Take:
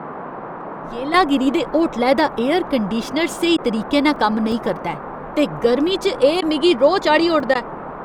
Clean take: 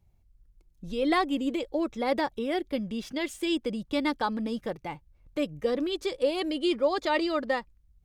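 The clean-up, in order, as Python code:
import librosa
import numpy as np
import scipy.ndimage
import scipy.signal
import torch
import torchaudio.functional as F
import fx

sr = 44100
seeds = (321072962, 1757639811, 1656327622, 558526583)

y = fx.fix_interpolate(x, sr, at_s=(4.16, 4.52, 7.4), length_ms=2.3)
y = fx.fix_interpolate(y, sr, at_s=(3.57, 6.41, 7.54), length_ms=10.0)
y = fx.noise_reduce(y, sr, print_start_s=0.13, print_end_s=0.63, reduce_db=29.0)
y = fx.gain(y, sr, db=fx.steps((0.0, 0.0), (1.14, -11.5)))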